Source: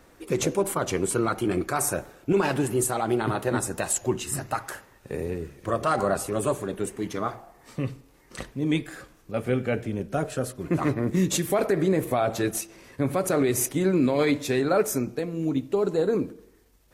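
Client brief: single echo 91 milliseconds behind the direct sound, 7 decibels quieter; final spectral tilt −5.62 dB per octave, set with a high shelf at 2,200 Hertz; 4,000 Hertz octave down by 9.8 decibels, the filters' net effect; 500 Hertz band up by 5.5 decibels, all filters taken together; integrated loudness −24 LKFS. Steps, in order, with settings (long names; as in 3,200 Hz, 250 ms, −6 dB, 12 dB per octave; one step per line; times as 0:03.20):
parametric band 500 Hz +7.5 dB
high-shelf EQ 2,200 Hz −7 dB
parametric band 4,000 Hz −6 dB
single-tap delay 91 ms −7 dB
level −1.5 dB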